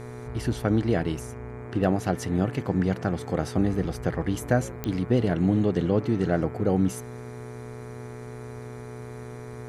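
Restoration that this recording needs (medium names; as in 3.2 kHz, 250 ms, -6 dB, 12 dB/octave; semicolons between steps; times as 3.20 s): de-click; de-hum 121.5 Hz, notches 20; band-stop 430 Hz, Q 30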